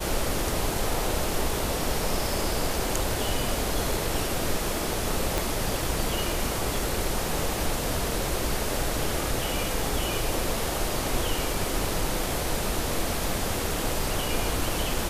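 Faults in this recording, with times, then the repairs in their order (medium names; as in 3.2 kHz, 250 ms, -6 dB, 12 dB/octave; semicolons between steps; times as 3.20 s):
5.38 s: pop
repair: de-click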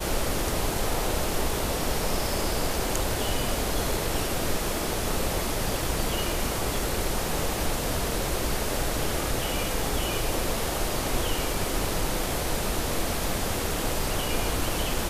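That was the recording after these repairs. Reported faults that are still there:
5.38 s: pop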